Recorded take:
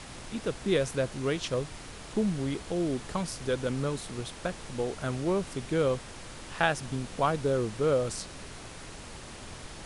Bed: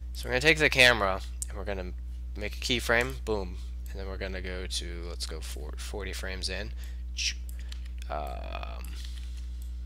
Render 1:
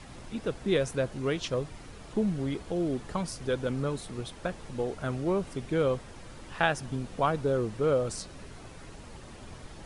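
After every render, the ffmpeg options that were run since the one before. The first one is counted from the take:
-af "afftdn=nr=8:nf=-45"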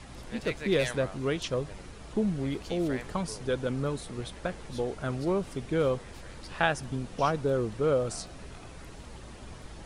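-filter_complex "[1:a]volume=-16dB[a];[0:a][a]amix=inputs=2:normalize=0"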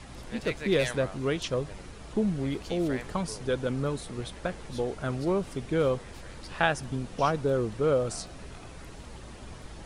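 -af "volume=1dB"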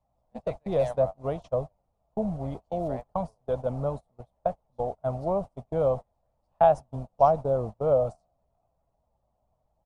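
-af "agate=range=-31dB:threshold=-31dB:ratio=16:detection=peak,firequalizer=gain_entry='entry(130,0);entry(360,-10);entry(650,12);entry(1600,-17);entry(6800,-14)':delay=0.05:min_phase=1"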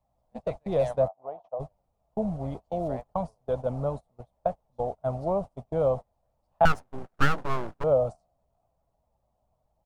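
-filter_complex "[0:a]asplit=3[a][b][c];[a]afade=t=out:st=1.07:d=0.02[d];[b]bandpass=f=770:t=q:w=3.4,afade=t=in:st=1.07:d=0.02,afade=t=out:st=1.59:d=0.02[e];[c]afade=t=in:st=1.59:d=0.02[f];[d][e][f]amix=inputs=3:normalize=0,asettb=1/sr,asplit=3[g][h][i];[g]atrim=end=6.654[j];[h]atrim=start=6.65:end=7.84,asetpts=PTS-STARTPTS,afade=t=in:d=0.004:c=qsin,afade=t=out:st=1.186:d=0.004:c=qsin,aeval=exprs='abs(val(0))':c=same[k];[i]atrim=start=7.836[l];[j][k]acrossfade=d=0.004:c1=hsin:c2=qsin[m];[m][l]acrossfade=d=0.004:c1=qsin:c2=hsin"

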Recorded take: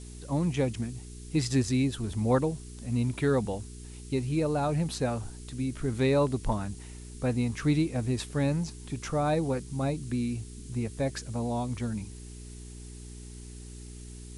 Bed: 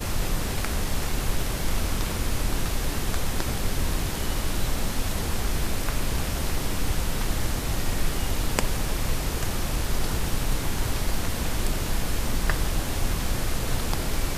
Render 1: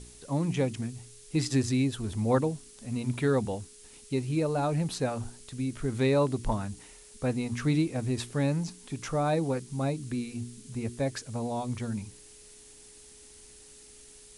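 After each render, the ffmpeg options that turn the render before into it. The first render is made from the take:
-af "bandreject=f=60:t=h:w=4,bandreject=f=120:t=h:w=4,bandreject=f=180:t=h:w=4,bandreject=f=240:t=h:w=4,bandreject=f=300:t=h:w=4,bandreject=f=360:t=h:w=4"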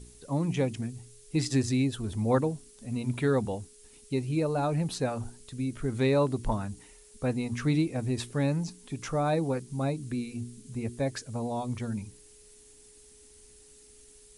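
-af "afftdn=nr=6:nf=-53"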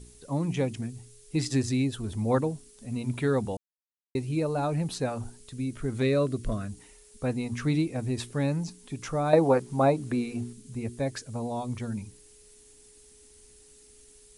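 -filter_complex "[0:a]asettb=1/sr,asplit=3[a][b][c];[a]atrim=end=6.024[d];[b]atrim=start=6.02:end=6.69,asetpts=PTS-STARTPTS,afade=t=in:d=0.004:c=qsin,afade=t=out:st=0.666:d=0.004:c=qsin,asuperstop=centerf=870:order=4:qfactor=2.3[e];[c]atrim=start=6.686[f];[d][e]acrossfade=d=0.004:c1=hsin:c2=qsin[g];[g][f]acrossfade=d=0.004:c1=qsin:c2=hsin,asettb=1/sr,asplit=3[h][i][j];[h]atrim=end=9.334[k];[i]atrim=start=9.33:end=10.53,asetpts=PTS-STARTPTS,afade=t=in:d=0.004:c=qsin,afade=t=out:st=1.196:d=0.004:c=qsin,equalizer=f=810:w=0.5:g=13[l];[j]atrim=start=10.526[m];[k][l]acrossfade=d=0.004:c1=hsin:c2=qsin[n];[n][m]acrossfade=d=0.004:c1=qsin:c2=hsin,asplit=3[o][p][q];[o]atrim=end=3.57,asetpts=PTS-STARTPTS,afade=t=out:st=3.566:d=0.004:c=hsin[r];[p]atrim=start=3.57:end=4.15,asetpts=PTS-STARTPTS,volume=0[s];[q]atrim=start=4.15,asetpts=PTS-STARTPTS,afade=t=in:d=0.004:c=hsin[t];[r][s][t]concat=n=3:v=0:a=1"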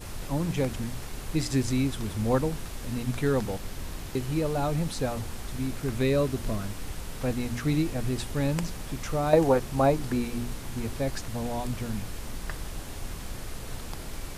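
-filter_complex "[1:a]volume=-11dB[a];[0:a][a]amix=inputs=2:normalize=0"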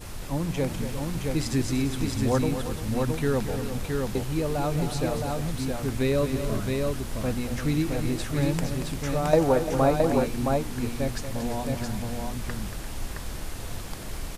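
-af "aecho=1:1:232|346|668:0.316|0.237|0.668"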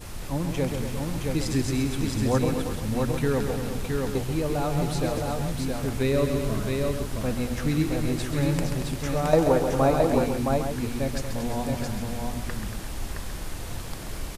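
-filter_complex "[0:a]asplit=2[a][b];[b]adelay=134.1,volume=-7dB,highshelf=f=4k:g=-3.02[c];[a][c]amix=inputs=2:normalize=0"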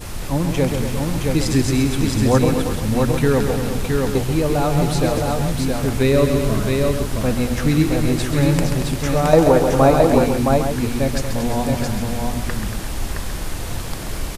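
-af "volume=8dB,alimiter=limit=-1dB:level=0:latency=1"

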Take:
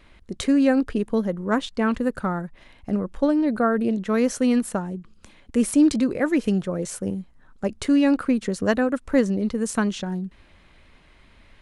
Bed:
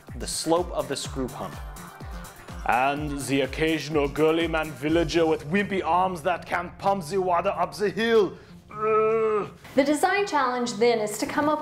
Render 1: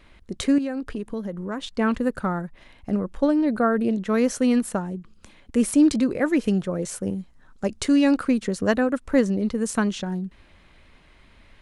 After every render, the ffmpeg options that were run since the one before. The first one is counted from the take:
-filter_complex "[0:a]asettb=1/sr,asplit=3[a][b][c];[a]atrim=end=0.584[d];[b]atrim=start=0.58:end=1.78,asetpts=PTS-STARTPTS,afade=t=in:d=0.004:c=qsin,afade=t=out:st=1.196:d=0.004:c=qsin,acompressor=threshold=-28dB:ratio=3:attack=3.2:release=140:knee=1:detection=peak[e];[c]atrim=start=1.776[f];[d][e]acrossfade=d=0.004:c1=hsin:c2=qsin[g];[g][f]acrossfade=d=0.004:c1=qsin:c2=hsin,asettb=1/sr,asplit=3[h][i][j];[h]atrim=end=7.194[k];[i]atrim=start=7.19:end=8.4,asetpts=PTS-STARTPTS,afade=t=in:d=0.004:c=qsin,afade=t=out:st=1.206:d=0.004:c=qsin,equalizer=f=6.2k:t=o:w=1.6:g=5.5[l];[j]atrim=start=8.396[m];[k][l]acrossfade=d=0.004:c1=hsin:c2=qsin[n];[n][m]acrossfade=d=0.004:c1=qsin:c2=hsin"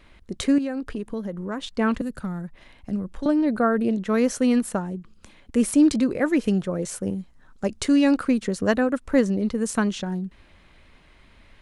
-filter_complex "[0:a]asettb=1/sr,asplit=3[a][b][c];[a]atrim=end=2.014[d];[b]atrim=start=2.01:end=3.26,asetpts=PTS-STARTPTS,afade=t=in:d=0.004:c=qsin,afade=t=out:st=1.246:d=0.004:c=qsin,acrossover=split=240|3000[e][f][g];[f]acompressor=threshold=-37dB:ratio=6:attack=3.2:release=140:knee=2.83:detection=peak[h];[e][h][g]amix=inputs=3:normalize=0[i];[c]atrim=start=3.256[j];[d][i]acrossfade=d=0.004:c1=hsin:c2=qsin[k];[k][j]acrossfade=d=0.004:c1=qsin:c2=hsin"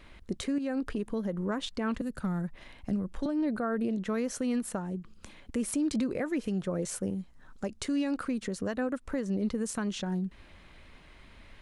-af "acompressor=threshold=-19dB:ratio=6,alimiter=limit=-22.5dB:level=0:latency=1:release=414"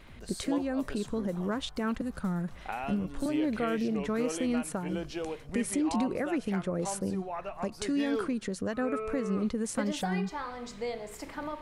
-filter_complex "[1:a]volume=-14.5dB[a];[0:a][a]amix=inputs=2:normalize=0"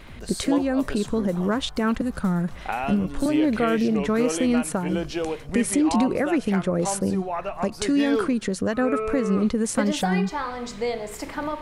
-af "volume=8.5dB"

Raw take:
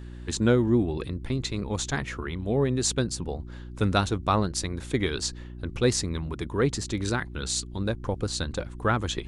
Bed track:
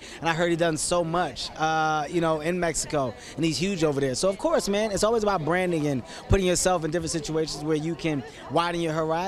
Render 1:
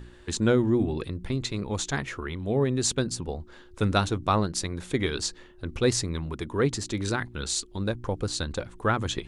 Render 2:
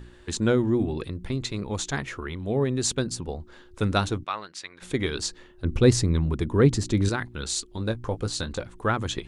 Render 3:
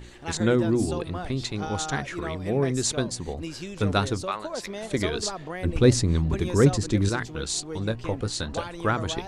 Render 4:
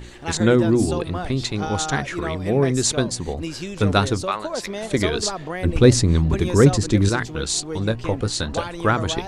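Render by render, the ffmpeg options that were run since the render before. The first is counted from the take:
-af "bandreject=f=60:t=h:w=4,bandreject=f=120:t=h:w=4,bandreject=f=180:t=h:w=4,bandreject=f=240:t=h:w=4,bandreject=f=300:t=h:w=4"
-filter_complex "[0:a]asplit=3[a][b][c];[a]afade=t=out:st=4.23:d=0.02[d];[b]bandpass=f=2.2k:t=q:w=1.1,afade=t=in:st=4.23:d=0.02,afade=t=out:st=4.81:d=0.02[e];[c]afade=t=in:st=4.81:d=0.02[f];[d][e][f]amix=inputs=3:normalize=0,asettb=1/sr,asplit=3[g][h][i];[g]atrim=end=5.644[j];[h]atrim=start=5.64:end=7.09,asetpts=PTS-STARTPTS,afade=t=in:d=0.004:c=qsin,afade=t=out:st=1.446:d=0.004:c=qsin,lowshelf=f=380:g=10[k];[i]atrim=start=7.086[l];[j][k]acrossfade=d=0.004:c1=hsin:c2=qsin[m];[m][l]acrossfade=d=0.004:c1=qsin:c2=hsin,asettb=1/sr,asplit=3[n][o][p];[n]atrim=end=7.764[q];[o]atrim=start=7.76:end=8.58,asetpts=PTS-STARTPTS,afade=t=in:d=0.004:c=qsin,afade=t=out:st=0.816:d=0.004:c=qsin,asplit=2[r][s];[s]adelay=18,volume=-9dB[t];[r][t]amix=inputs=2:normalize=0,atrim=end_sample=36162[u];[p]atrim=start=8.576[v];[q][u]acrossfade=d=0.004:c1=hsin:c2=qsin[w];[w][v]acrossfade=d=0.004:c1=qsin:c2=hsin"
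-filter_complex "[1:a]volume=-11dB[a];[0:a][a]amix=inputs=2:normalize=0"
-af "volume=5.5dB,alimiter=limit=-2dB:level=0:latency=1"

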